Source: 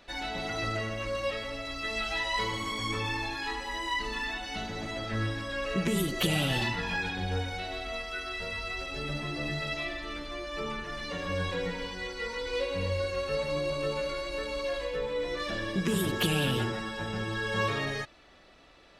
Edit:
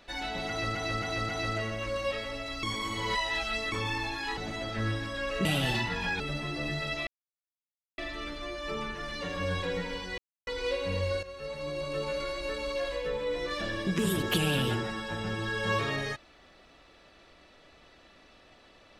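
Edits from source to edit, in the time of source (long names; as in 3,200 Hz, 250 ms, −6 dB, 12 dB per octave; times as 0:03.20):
0:00.48–0:00.75: repeat, 4 plays
0:01.82–0:02.91: reverse
0:03.56–0:04.72: remove
0:05.80–0:06.32: remove
0:07.07–0:09.00: remove
0:09.87: splice in silence 0.91 s
0:12.07–0:12.36: silence
0:13.12–0:14.13: fade in, from −13.5 dB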